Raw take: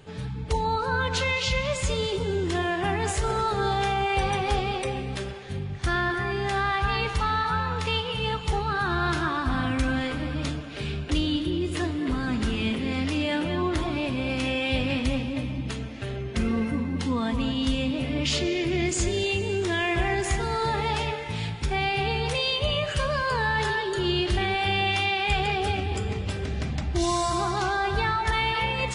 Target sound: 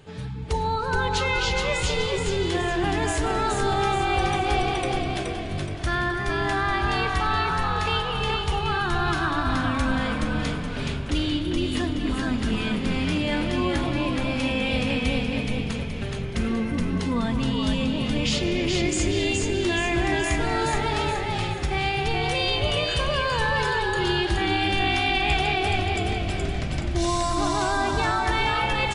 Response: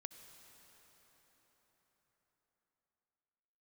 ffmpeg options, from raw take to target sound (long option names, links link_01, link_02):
-filter_complex "[0:a]asplit=6[link_01][link_02][link_03][link_04][link_05][link_06];[link_02]adelay=423,afreqshift=-45,volume=-3dB[link_07];[link_03]adelay=846,afreqshift=-90,volume=-10.5dB[link_08];[link_04]adelay=1269,afreqshift=-135,volume=-18.1dB[link_09];[link_05]adelay=1692,afreqshift=-180,volume=-25.6dB[link_10];[link_06]adelay=2115,afreqshift=-225,volume=-33.1dB[link_11];[link_01][link_07][link_08][link_09][link_10][link_11]amix=inputs=6:normalize=0"